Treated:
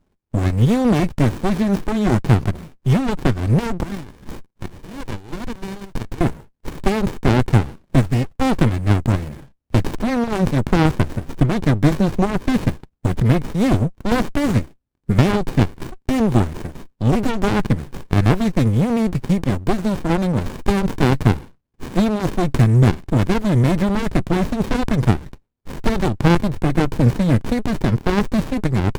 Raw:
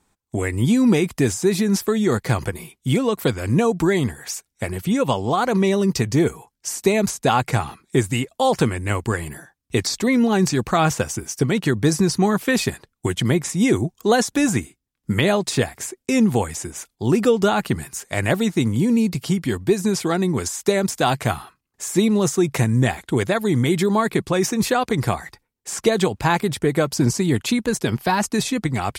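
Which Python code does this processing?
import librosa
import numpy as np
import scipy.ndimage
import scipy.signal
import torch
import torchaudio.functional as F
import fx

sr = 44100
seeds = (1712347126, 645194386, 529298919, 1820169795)

y = fx.highpass(x, sr, hz=1200.0, slope=12, at=(3.83, 6.21))
y = fx.running_max(y, sr, window=65)
y = y * librosa.db_to_amplitude(4.0)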